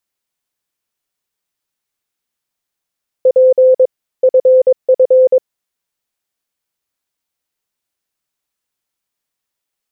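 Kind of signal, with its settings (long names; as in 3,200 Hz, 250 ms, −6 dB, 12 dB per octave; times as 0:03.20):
Morse code "P FF" 22 words per minute 515 Hz −4.5 dBFS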